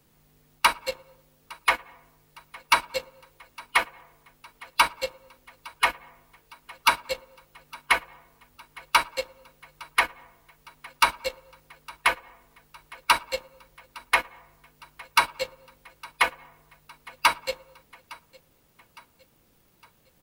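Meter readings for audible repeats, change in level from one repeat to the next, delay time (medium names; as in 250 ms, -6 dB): 2, -6.0 dB, 860 ms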